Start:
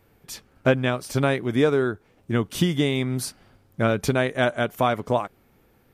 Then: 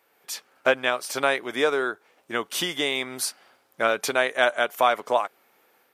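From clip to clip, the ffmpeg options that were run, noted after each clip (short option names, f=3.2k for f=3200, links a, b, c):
-af "highpass=630,dynaudnorm=f=110:g=3:m=4dB"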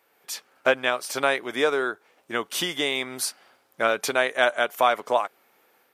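-af anull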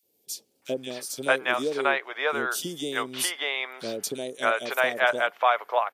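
-filter_complex "[0:a]acrossover=split=480|3900[a][b][c];[a]adelay=30[d];[b]adelay=620[e];[d][e][c]amix=inputs=3:normalize=0"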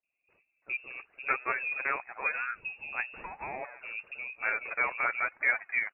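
-af "aphaser=in_gain=1:out_gain=1:delay=4.1:decay=0.5:speed=1:type=triangular,lowpass=f=2.5k:t=q:w=0.5098,lowpass=f=2.5k:t=q:w=0.6013,lowpass=f=2.5k:t=q:w=0.9,lowpass=f=2.5k:t=q:w=2.563,afreqshift=-2900,volume=-7.5dB"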